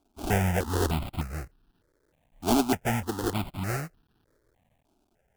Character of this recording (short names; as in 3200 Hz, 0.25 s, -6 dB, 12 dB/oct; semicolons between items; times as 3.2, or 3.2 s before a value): a quantiser's noise floor 12-bit, dither triangular; tremolo triangle 0.52 Hz, depth 35%; aliases and images of a low sample rate 1100 Hz, jitter 20%; notches that jump at a steady rate 3.3 Hz 500–2100 Hz